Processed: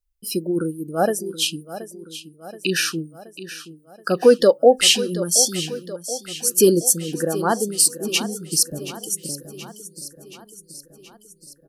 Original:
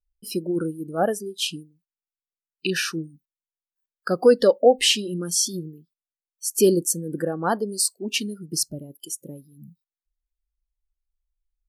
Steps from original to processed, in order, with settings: treble shelf 6 kHz +6 dB; on a send: feedback delay 726 ms, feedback 59%, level -14 dB; on the sum: trim +2.5 dB

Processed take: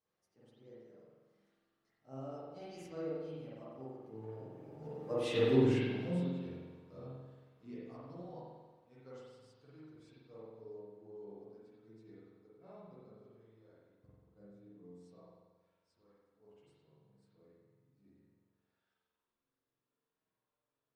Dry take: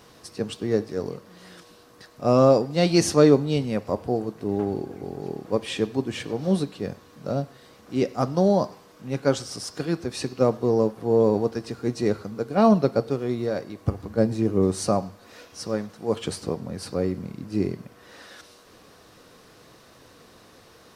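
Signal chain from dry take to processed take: Doppler pass-by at 5.46 s, 27 m/s, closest 3.5 m; chorus voices 4, 0.18 Hz, delay 11 ms, depth 4.7 ms; spring tank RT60 1.3 s, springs 45 ms, chirp 50 ms, DRR -8 dB; trim -5.5 dB

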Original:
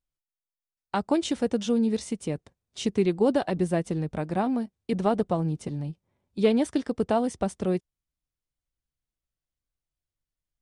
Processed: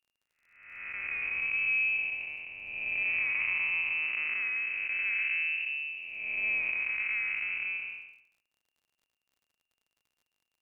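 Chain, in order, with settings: spectral blur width 480 ms; frequency inversion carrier 2.8 kHz; crackle 57 per s -58 dBFS

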